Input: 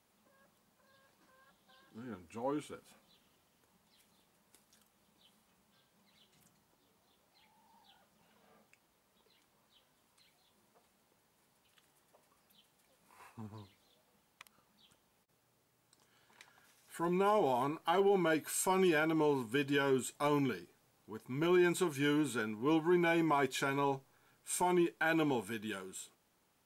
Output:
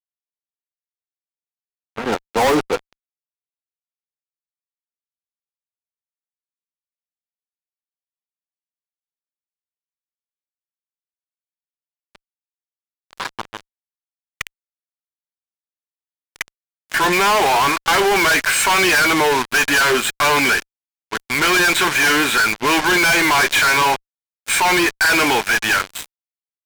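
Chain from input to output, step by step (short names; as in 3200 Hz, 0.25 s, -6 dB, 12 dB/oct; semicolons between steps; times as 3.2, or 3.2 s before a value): band-pass sweep 710 Hz -> 1900 Hz, 11.05–14.05; fuzz box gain 61 dB, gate -60 dBFS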